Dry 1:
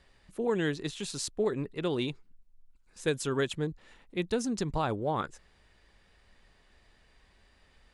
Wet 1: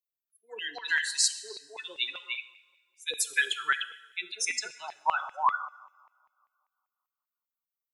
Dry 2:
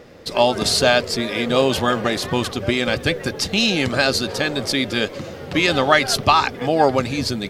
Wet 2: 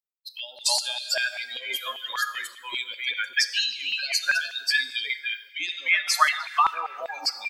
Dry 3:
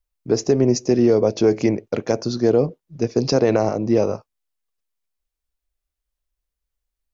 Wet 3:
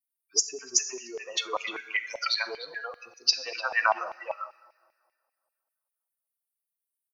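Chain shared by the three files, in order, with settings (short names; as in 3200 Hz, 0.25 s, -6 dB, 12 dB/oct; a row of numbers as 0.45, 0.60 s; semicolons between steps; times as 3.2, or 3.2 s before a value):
per-bin expansion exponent 3; HPF 360 Hz 6 dB/oct; tilt shelf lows -4 dB; wow and flutter 29 cents; two-slope reverb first 0.84 s, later 2.2 s, from -18 dB, DRR 10.5 dB; compressor 6:1, threshold -27 dBFS; three bands offset in time highs, lows, mids 40/300 ms, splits 540/2800 Hz; LFO high-pass saw down 5.1 Hz 870–2400 Hz; normalise peaks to -6 dBFS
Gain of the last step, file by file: +11.5, +6.0, +9.5 dB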